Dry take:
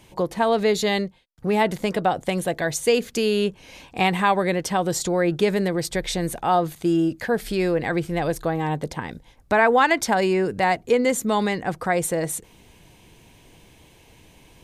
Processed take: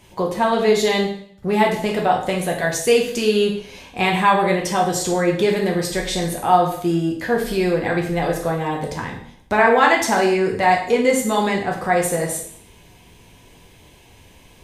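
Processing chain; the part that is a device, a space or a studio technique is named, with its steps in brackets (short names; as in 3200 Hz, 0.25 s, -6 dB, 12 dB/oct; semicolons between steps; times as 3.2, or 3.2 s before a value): bathroom (reverb RT60 0.60 s, pre-delay 6 ms, DRR -1 dB)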